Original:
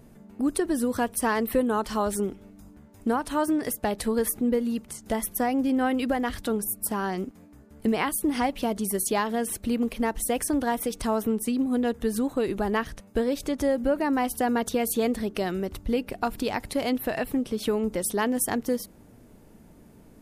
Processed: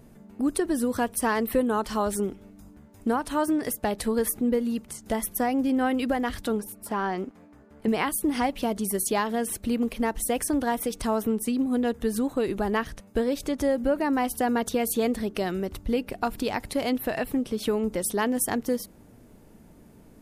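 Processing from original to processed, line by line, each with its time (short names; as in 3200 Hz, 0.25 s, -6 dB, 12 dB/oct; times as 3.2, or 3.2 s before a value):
6.6–7.88 overdrive pedal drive 11 dB, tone 1500 Hz, clips at -14.5 dBFS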